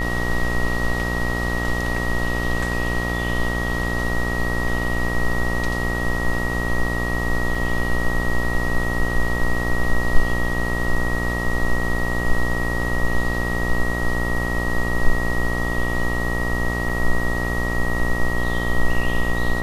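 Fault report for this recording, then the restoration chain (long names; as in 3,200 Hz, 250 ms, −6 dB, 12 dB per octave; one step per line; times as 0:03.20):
mains buzz 60 Hz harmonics 22 −25 dBFS
whistle 1,900 Hz −26 dBFS
0:07.55: drop-out 3.4 ms
0:16.89: drop-out 4.5 ms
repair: notch filter 1,900 Hz, Q 30
hum removal 60 Hz, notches 22
repair the gap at 0:07.55, 3.4 ms
repair the gap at 0:16.89, 4.5 ms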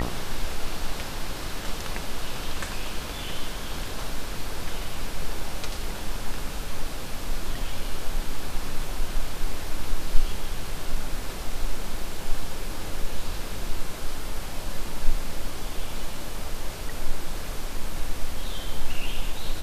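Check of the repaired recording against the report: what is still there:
none of them is left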